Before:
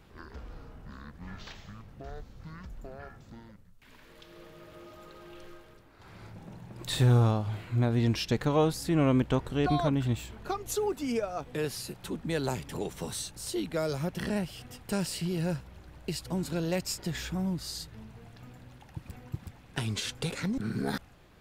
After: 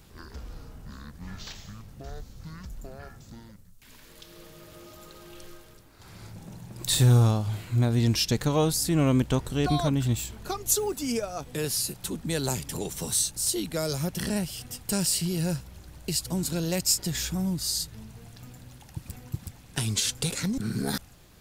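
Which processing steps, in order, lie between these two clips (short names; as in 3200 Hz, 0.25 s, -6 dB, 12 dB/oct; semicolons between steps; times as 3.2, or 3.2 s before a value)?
tone controls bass +4 dB, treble +14 dB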